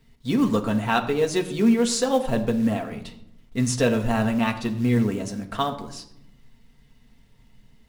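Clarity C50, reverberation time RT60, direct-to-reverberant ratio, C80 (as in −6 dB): 12.0 dB, 0.80 s, 2.0 dB, 14.0 dB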